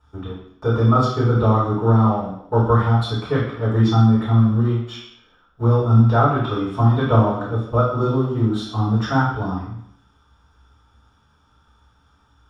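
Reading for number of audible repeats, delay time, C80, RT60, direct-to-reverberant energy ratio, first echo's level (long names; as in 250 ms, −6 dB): no echo audible, no echo audible, 6.5 dB, 0.70 s, −8.0 dB, no echo audible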